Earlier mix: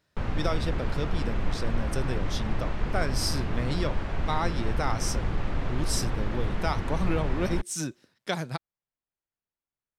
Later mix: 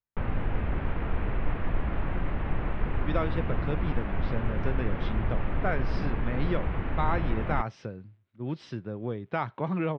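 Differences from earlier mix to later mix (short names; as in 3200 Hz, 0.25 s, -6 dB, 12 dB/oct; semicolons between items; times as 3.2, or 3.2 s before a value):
speech: entry +2.70 s; master: add LPF 2800 Hz 24 dB/oct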